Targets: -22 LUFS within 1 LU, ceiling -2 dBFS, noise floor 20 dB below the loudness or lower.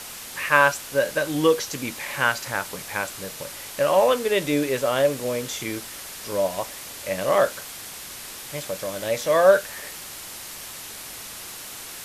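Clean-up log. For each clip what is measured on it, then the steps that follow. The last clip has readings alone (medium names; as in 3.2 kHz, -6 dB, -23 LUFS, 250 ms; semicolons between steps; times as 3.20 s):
noise floor -38 dBFS; noise floor target -44 dBFS; loudness -23.5 LUFS; peak level -2.0 dBFS; loudness target -22.0 LUFS
-> noise reduction 6 dB, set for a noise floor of -38 dBFS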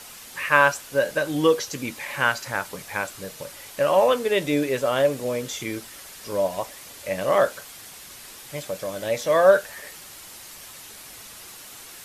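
noise floor -43 dBFS; loudness -23.0 LUFS; peak level -2.0 dBFS; loudness target -22.0 LUFS
-> trim +1 dB; peak limiter -2 dBFS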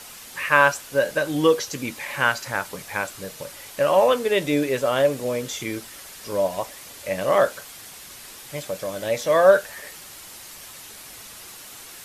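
loudness -22.0 LUFS; peak level -2.0 dBFS; noise floor -42 dBFS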